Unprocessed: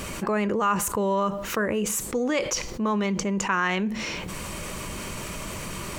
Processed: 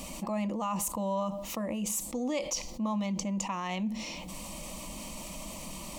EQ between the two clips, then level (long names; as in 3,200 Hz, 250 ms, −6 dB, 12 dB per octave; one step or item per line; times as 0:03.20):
phaser with its sweep stopped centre 410 Hz, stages 6
−4.5 dB